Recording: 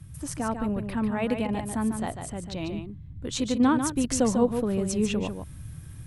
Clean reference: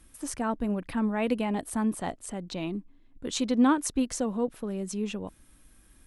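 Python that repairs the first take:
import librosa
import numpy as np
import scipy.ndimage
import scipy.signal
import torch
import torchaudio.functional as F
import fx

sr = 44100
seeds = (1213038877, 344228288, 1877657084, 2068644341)

y = fx.fix_interpolate(x, sr, at_s=(1.47, 3.58), length_ms=15.0)
y = fx.noise_reduce(y, sr, print_start_s=5.48, print_end_s=5.98, reduce_db=15.0)
y = fx.fix_echo_inverse(y, sr, delay_ms=146, level_db=-7.0)
y = fx.fix_level(y, sr, at_s=4.04, step_db=-6.0)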